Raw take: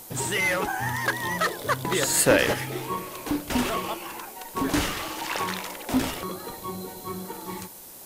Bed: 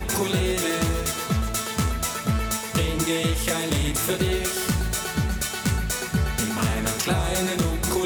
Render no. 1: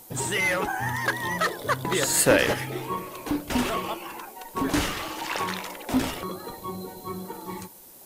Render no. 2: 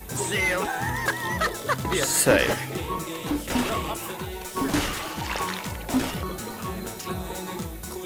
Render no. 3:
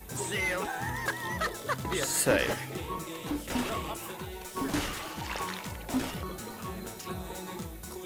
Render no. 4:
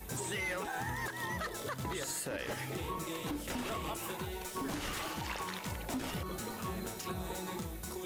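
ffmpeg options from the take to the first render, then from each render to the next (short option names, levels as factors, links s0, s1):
-af "afftdn=nr=6:nf=-44"
-filter_complex "[1:a]volume=0.266[s0];[0:a][s0]amix=inputs=2:normalize=0"
-af "volume=0.473"
-af "acompressor=threshold=0.0282:ratio=6,alimiter=level_in=1.58:limit=0.0631:level=0:latency=1:release=108,volume=0.631"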